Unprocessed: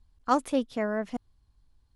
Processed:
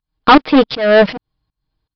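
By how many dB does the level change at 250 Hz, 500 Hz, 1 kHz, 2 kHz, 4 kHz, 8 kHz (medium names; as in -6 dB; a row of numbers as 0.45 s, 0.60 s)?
+16.5 dB, +18.5 dB, +17.0 dB, +21.5 dB, +25.0 dB, no reading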